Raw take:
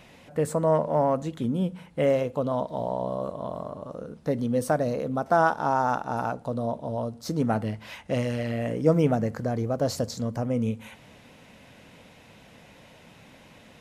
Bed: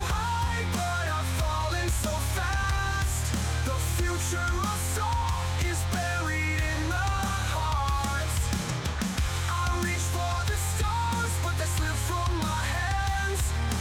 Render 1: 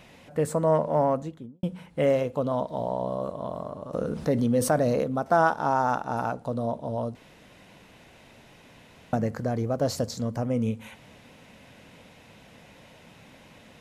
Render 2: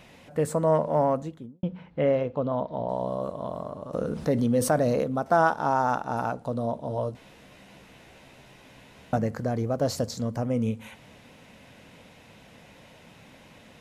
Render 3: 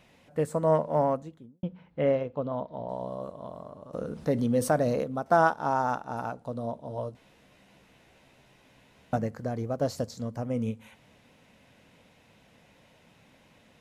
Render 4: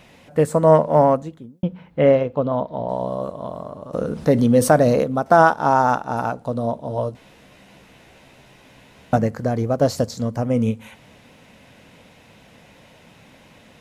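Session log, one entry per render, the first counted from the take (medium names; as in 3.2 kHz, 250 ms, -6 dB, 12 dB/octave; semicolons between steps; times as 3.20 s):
1.04–1.63 s: studio fade out; 3.93–5.04 s: level flattener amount 50%; 7.15–9.13 s: room tone
1.53–2.89 s: distance through air 240 m; 6.89–9.18 s: doubling 15 ms -5 dB
upward expansion 1.5:1, over -34 dBFS
trim +10.5 dB; peak limiter -2 dBFS, peak gain reduction 2.5 dB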